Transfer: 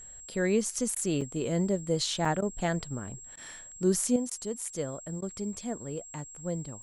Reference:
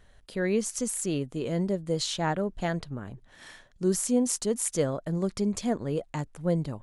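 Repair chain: notch 7600 Hz, Q 30; interpolate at 1.21/2.25, 4.5 ms; interpolate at 0.95/2.41/3.36/4.3/5.21, 11 ms; gain 0 dB, from 4.16 s +7.5 dB

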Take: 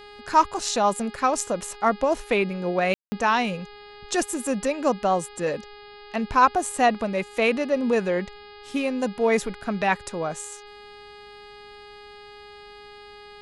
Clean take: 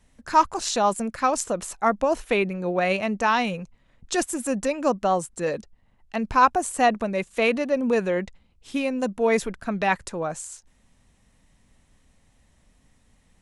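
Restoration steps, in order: de-hum 412.6 Hz, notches 12; room tone fill 2.94–3.12

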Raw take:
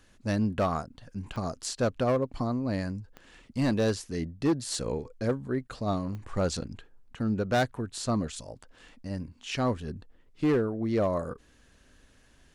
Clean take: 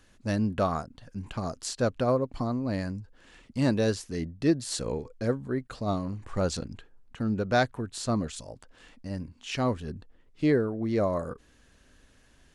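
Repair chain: clip repair -20 dBFS; de-click

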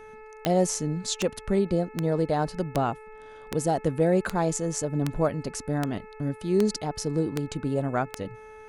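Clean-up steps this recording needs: de-click; de-hum 433.4 Hz, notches 6

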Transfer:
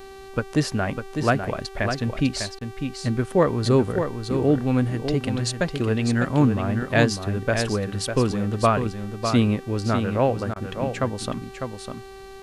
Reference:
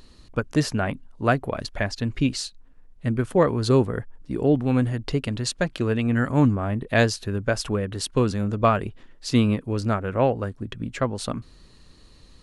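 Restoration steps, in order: de-hum 387.9 Hz, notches 35; interpolate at 2.59/10.54, 19 ms; inverse comb 0.601 s -7 dB

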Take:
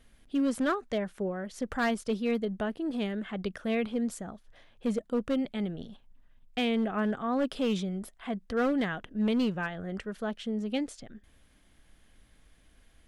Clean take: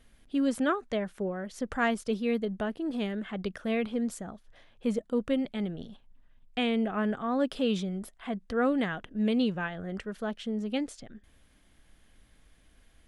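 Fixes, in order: clip repair -22.5 dBFS

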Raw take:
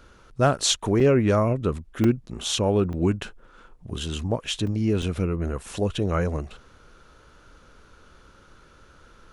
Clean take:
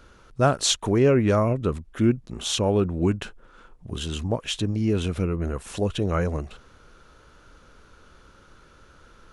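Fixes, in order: clip repair -10 dBFS; interpolate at 1/2.04/2.93/4.67/5.02, 3.3 ms

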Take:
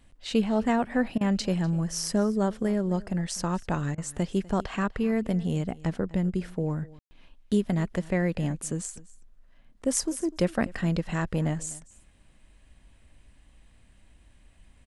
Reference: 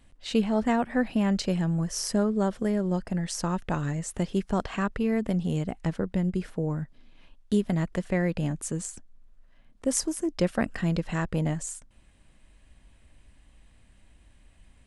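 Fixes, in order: room tone fill 6.99–7.11; interpolate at 1.18/3.95, 28 ms; inverse comb 0.248 s -21 dB

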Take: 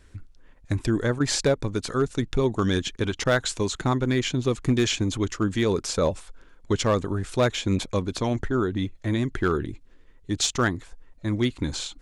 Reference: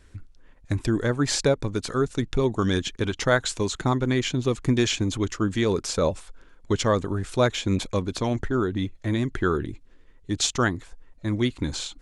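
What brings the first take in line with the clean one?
clip repair -14 dBFS; interpolate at 1.19/3.24/7.86, 11 ms

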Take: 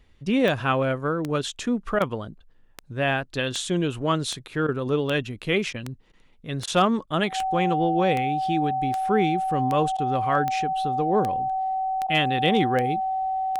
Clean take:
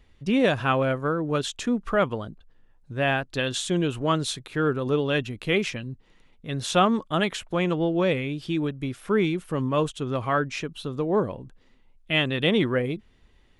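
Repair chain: clip repair -10.5 dBFS; de-click; notch 760 Hz, Q 30; interpolate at 1.99/4.67/5.73/6.12/6.66/7.06/9.97/12.07, 13 ms

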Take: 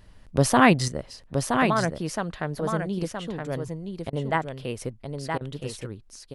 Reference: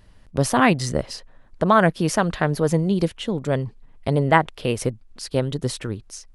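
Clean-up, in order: interpolate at 4.1/5.38, 27 ms; inverse comb 0.97 s -5.5 dB; gain correction +9 dB, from 0.88

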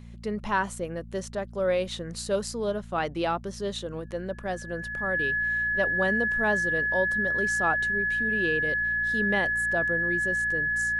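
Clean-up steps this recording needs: de-hum 57.7 Hz, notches 4; notch 1700 Hz, Q 30

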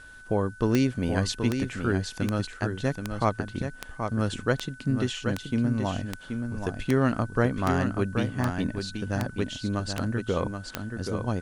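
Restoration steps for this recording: de-click; notch 1500 Hz, Q 30; expander -35 dBFS, range -21 dB; inverse comb 0.778 s -6.5 dB

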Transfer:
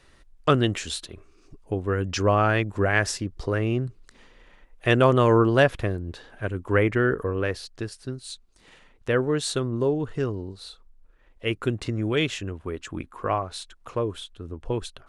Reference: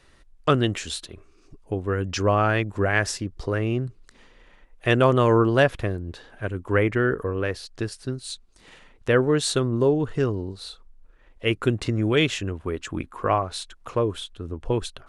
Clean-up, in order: gain correction +3.5 dB, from 7.68

